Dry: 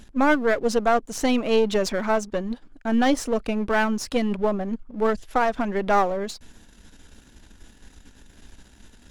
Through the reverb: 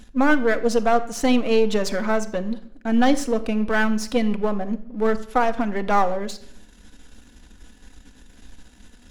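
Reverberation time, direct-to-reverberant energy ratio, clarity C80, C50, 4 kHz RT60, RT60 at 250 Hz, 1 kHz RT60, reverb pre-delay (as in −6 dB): 0.70 s, 8.0 dB, 18.5 dB, 15.0 dB, 0.55 s, 0.80 s, 0.60 s, 4 ms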